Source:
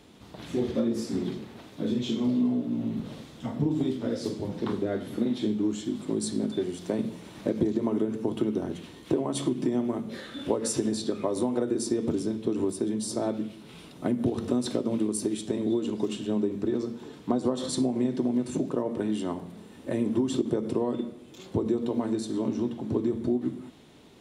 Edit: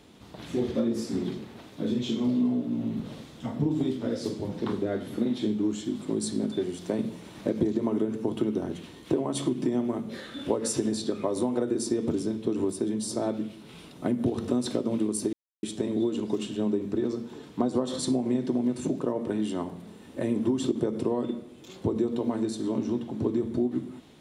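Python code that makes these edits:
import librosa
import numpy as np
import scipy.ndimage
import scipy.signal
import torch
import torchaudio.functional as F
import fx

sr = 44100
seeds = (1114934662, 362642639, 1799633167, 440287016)

y = fx.edit(x, sr, fx.insert_silence(at_s=15.33, length_s=0.3), tone=tone)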